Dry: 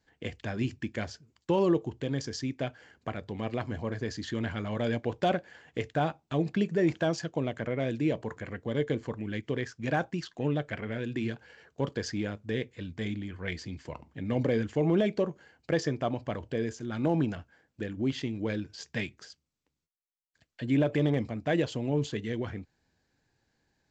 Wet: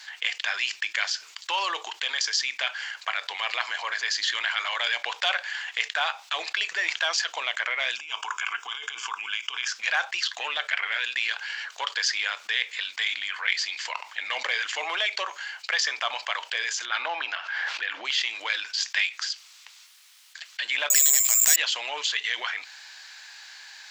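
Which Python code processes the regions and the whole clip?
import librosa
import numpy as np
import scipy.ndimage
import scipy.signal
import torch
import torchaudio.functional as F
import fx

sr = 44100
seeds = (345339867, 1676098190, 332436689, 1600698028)

y = fx.chain(x, sr, fx.fixed_phaser(hz=2800.0, stages=8),
    fx.over_compress(threshold_db=-38.0, ratio=-0.5), at=(7.96, 9.68))
y = fx.chain(y, sr, fx.highpass(hz=140.0, slope=12),
    fx.air_absorb(metres=190.0),
    fx.pre_swell(db_per_s=50.0), at=(16.85, 18.05))
y = fx.chain(y, sr, fx.highpass(hz=260.0, slope=6),
    fx.resample_bad(factor=6, down='none', up='zero_stuff'),
    fx.pre_swell(db_per_s=35.0), at=(20.9, 21.56))
y = scipy.signal.sosfilt(scipy.signal.butter(4, 910.0, 'highpass', fs=sr, output='sos'), y)
y = fx.peak_eq(y, sr, hz=3600.0, db=13.5, octaves=2.9)
y = fx.env_flatten(y, sr, amount_pct=50)
y = F.gain(torch.from_numpy(y), -4.5).numpy()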